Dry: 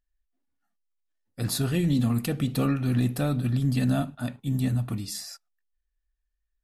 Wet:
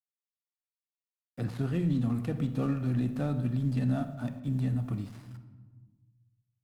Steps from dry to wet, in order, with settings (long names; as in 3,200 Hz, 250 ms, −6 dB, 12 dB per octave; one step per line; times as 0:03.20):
gap after every zero crossing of 0.1 ms
low-pass filter 11,000 Hz 12 dB per octave
high-shelf EQ 2,400 Hz −11 dB
bit reduction 11 bits
feedback echo with a band-pass in the loop 60 ms, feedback 72%, band-pass 860 Hz, level −16.5 dB
on a send at −12 dB: convolution reverb RT60 1.0 s, pre-delay 30 ms
on the sum: multiband upward and downward compressor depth 40%
level −5 dB